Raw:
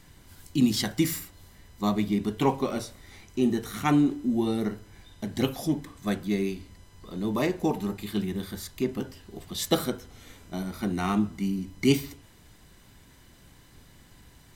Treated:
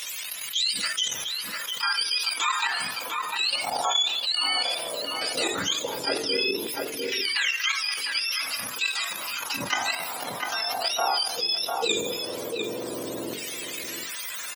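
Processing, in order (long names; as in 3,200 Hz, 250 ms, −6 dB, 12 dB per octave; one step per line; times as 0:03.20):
frequency axis turned over on the octave scale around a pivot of 1,000 Hz
output level in coarse steps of 11 dB
auto-filter high-pass saw down 0.15 Hz 350–2,400 Hz
mains-hum notches 50/100/150/200/250/300/350/400/450 Hz
slap from a distant wall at 120 metres, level −13 dB
envelope flattener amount 70%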